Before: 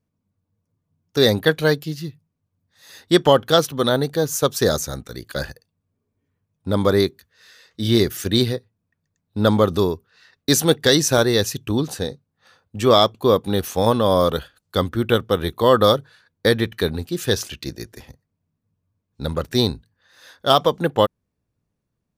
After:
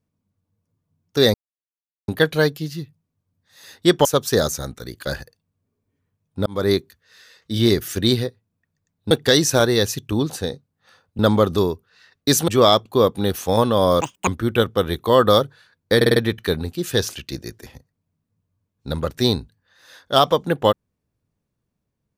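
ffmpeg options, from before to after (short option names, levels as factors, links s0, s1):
-filter_complex "[0:a]asplit=13[s0][s1][s2][s3][s4][s5][s6][s7][s8][s9][s10][s11][s12];[s0]atrim=end=1.34,asetpts=PTS-STARTPTS,afade=t=out:st=1.336:d=0.004:c=hsin,apad=pad_dur=0.74[s13];[s1]atrim=start=1.34:end=3.312,asetpts=PTS-STARTPTS,afade=t=in:d=0.004:c=hsin[s14];[s2]atrim=start=4.338:end=6.75,asetpts=PTS-STARTPTS,afade=t=out:st=2.408:d=0.004:c=hsin[s15];[s3]atrim=start=6.75:end=9.402,asetpts=PTS-STARTPTS,afade=t=in:d=0.27[s16];[s4]atrim=start=10.688:end=12.772[s17];[s5]atrim=start=9.398:end=10.692[s18];[s6]atrim=start=12.768:end=14.304[s19];[s7]atrim=start=14.3:end=14.81,asetpts=PTS-STARTPTS,asetrate=85995,aresample=44100[s20];[s8]atrim=start=14.806:end=16.552[s21];[s9]atrim=start=16.498:end=16.552[s22];[s10]atrim=start=16.498:end=16.552[s23];[s11]atrim=start=16.498:end=16.552[s24];[s12]atrim=start=16.498[s25];[s13][s14]concat=n=2:v=0:a=1[s26];[s15][s16]concat=n=2:v=0:a=1[s27];[s26][s27]acrossfade=d=0.004:c1=hsin:c2=hsin[s28];[s28][s17]acrossfade=d=0.004:c1=hsin:c2=hsin[s29];[s29][s18]acrossfade=d=0.004:c1=hsin:c2=hsin[s30];[s30][s19]acrossfade=d=0.004:c1=hsin:c2=hsin[s31];[s31][s20]acrossfade=d=0.004:c1=hsin:c2=hsin[s32];[s32][s21]acrossfade=d=0.004:c1=hsin:c2=hsin[s33];[s33][s22]acrossfade=d=0.004:c1=hsin:c2=hsin[s34];[s34][s23]acrossfade=d=0.004:c1=hsin:c2=hsin[s35];[s35][s24]acrossfade=d=0.004:c1=hsin:c2=hsin[s36];[s36][s25]acrossfade=d=0.004:c1=hsin:c2=hsin"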